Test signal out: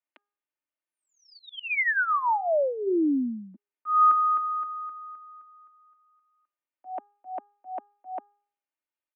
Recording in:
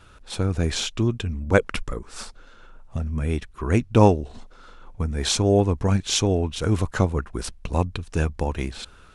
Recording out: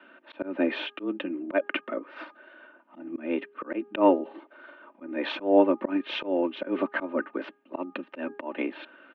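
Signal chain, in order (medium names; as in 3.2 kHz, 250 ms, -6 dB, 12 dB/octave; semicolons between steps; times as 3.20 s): mistuned SSB +93 Hz 160–2800 Hz; comb 3.3 ms, depth 62%; de-hum 409.1 Hz, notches 4; slow attack 181 ms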